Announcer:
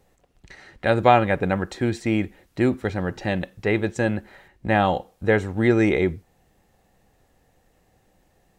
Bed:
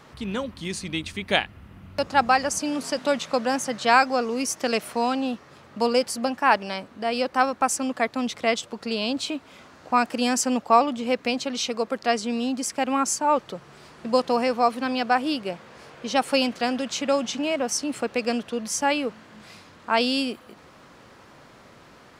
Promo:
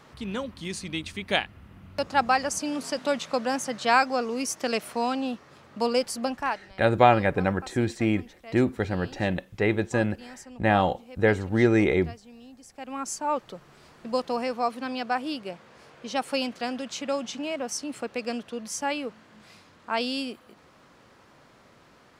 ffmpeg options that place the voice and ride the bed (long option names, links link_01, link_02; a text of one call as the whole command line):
ffmpeg -i stem1.wav -i stem2.wav -filter_complex "[0:a]adelay=5950,volume=-2dB[link_01];[1:a]volume=13dB,afade=type=out:start_time=6.34:duration=0.26:silence=0.112202,afade=type=in:start_time=12.68:duration=0.58:silence=0.158489[link_02];[link_01][link_02]amix=inputs=2:normalize=0" out.wav